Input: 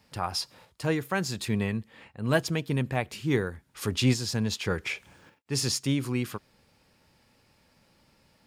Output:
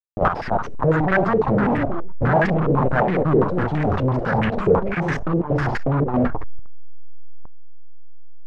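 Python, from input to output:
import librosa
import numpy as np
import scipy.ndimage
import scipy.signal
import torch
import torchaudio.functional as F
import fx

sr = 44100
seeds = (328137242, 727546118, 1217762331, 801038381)

p1 = fx.delta_hold(x, sr, step_db=-27.0)
p2 = np.clip(p1, -10.0 ** (-27.5 / 20.0), 10.0 ** (-27.5 / 20.0))
p3 = p1 + (p2 * 10.0 ** (-11.5 / 20.0))
p4 = fx.peak_eq(p3, sr, hz=150.0, db=9.0, octaves=0.23)
p5 = fx.dereverb_blind(p4, sr, rt60_s=1.2)
p6 = p5 + fx.room_early_taps(p5, sr, ms=(31, 64), db=(-13.5, -5.0), dry=0)
p7 = fx.level_steps(p6, sr, step_db=15)
p8 = fx.echo_pitch(p7, sr, ms=337, semitones=3, count=3, db_per_echo=-6.0)
p9 = fx.leveller(p8, sr, passes=5)
p10 = fx.rider(p9, sr, range_db=3, speed_s=0.5)
y = fx.filter_held_lowpass(p10, sr, hz=12.0, low_hz=460.0, high_hz=1800.0)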